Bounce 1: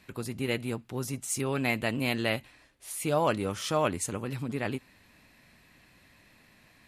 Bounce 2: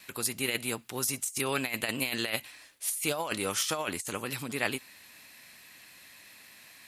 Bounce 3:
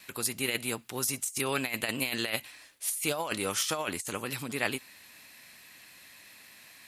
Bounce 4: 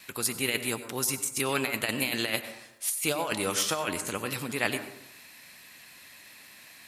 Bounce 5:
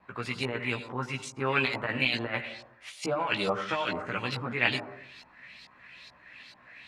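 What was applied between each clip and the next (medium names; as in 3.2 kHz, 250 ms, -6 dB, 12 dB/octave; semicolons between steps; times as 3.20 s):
tilt EQ +3.5 dB/octave; compressor with a negative ratio -30 dBFS, ratio -0.5; gate with hold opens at -51 dBFS
no audible change
plate-style reverb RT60 0.8 s, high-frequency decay 0.35×, pre-delay 80 ms, DRR 10 dB; trim +2 dB
low-pass 11 kHz 12 dB/octave; LFO low-pass saw up 2.3 Hz 810–5000 Hz; chorus voices 6, 0.52 Hz, delay 16 ms, depth 1.1 ms; trim +1.5 dB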